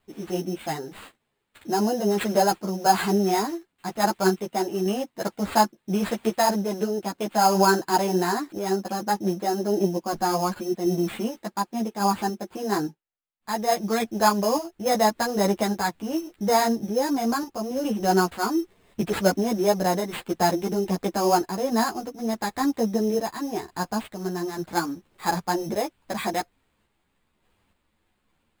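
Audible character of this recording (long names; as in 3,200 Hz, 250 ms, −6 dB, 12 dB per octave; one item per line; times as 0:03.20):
sample-and-hold tremolo
aliases and images of a low sample rate 5,800 Hz, jitter 0%
a shimmering, thickened sound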